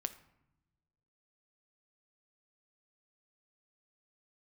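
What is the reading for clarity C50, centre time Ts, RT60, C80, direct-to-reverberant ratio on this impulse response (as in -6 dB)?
14.5 dB, 5 ms, 0.85 s, 17.0 dB, 9.5 dB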